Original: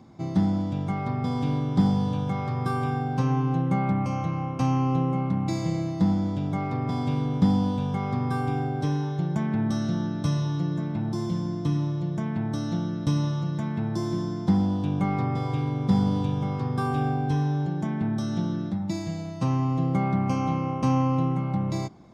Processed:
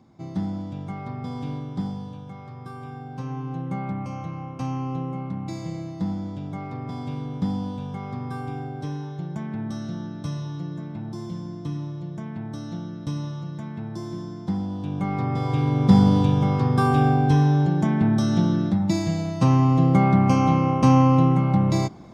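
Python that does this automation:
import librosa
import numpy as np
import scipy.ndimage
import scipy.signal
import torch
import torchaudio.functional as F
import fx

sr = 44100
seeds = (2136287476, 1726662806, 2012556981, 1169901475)

y = fx.gain(x, sr, db=fx.line((1.51, -5.0), (2.21, -11.5), (2.74, -11.5), (3.74, -5.0), (14.68, -5.0), (15.82, 7.0)))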